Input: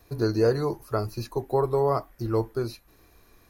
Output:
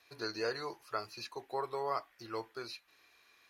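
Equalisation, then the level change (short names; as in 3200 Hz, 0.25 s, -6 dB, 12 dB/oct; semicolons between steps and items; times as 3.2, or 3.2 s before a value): band-pass 2800 Hz, Q 1.2; +2.5 dB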